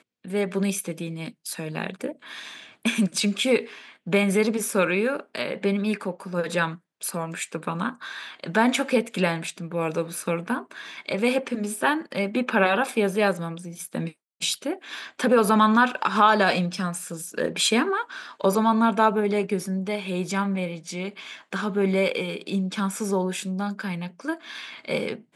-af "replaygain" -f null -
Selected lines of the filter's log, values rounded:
track_gain = +3.9 dB
track_peak = 0.394